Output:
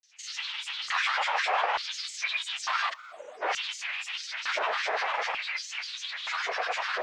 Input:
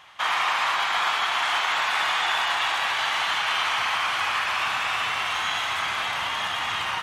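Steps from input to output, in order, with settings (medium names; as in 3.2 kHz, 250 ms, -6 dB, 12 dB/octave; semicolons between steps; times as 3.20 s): formant shift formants +3 st; time-frequency box 2.91–3.42 s, 780–7900 Hz -26 dB; LFO high-pass square 0.56 Hz 810–4300 Hz; granulator 100 ms, grains 20 per s, spray 24 ms, pitch spread up and down by 12 st; distance through air 140 m; trim -3.5 dB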